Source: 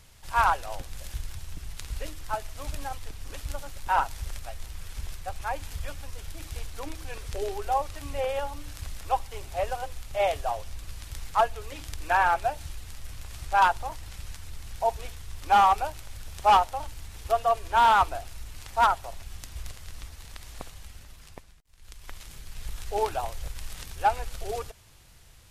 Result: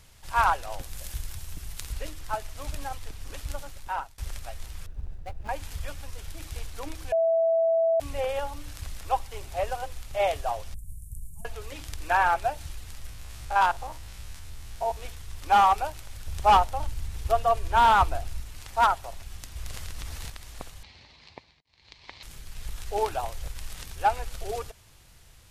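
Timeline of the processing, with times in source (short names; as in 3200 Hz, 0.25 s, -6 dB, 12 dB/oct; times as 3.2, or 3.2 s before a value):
0.8–1.93 high shelf 8600 Hz +9 dB
3.58–4.18 fade out, to -23.5 dB
4.86–5.49 median filter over 41 samples
7.12–8 bleep 658 Hz -19.5 dBFS
10.74–11.45 elliptic band-stop 180–8900 Hz
13.09–15.02 stepped spectrum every 50 ms
16.27–18.4 low shelf 200 Hz +9 dB
19.6–20.3 fast leveller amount 70%
20.83–22.23 speaker cabinet 110–5000 Hz, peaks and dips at 170 Hz -5 dB, 910 Hz +5 dB, 1400 Hz -8 dB, 2200 Hz +6 dB, 4200 Hz +9 dB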